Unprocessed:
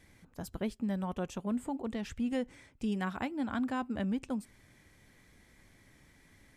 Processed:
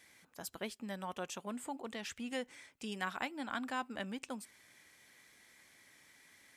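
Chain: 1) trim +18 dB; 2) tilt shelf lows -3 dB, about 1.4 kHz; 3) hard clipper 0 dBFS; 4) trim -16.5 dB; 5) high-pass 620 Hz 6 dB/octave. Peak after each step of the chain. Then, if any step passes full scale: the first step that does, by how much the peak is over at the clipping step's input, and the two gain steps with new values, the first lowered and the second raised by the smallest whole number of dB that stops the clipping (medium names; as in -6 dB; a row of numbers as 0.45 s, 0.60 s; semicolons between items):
-3.0 dBFS, -4.5 dBFS, -4.5 dBFS, -21.0 dBFS, -21.0 dBFS; nothing clips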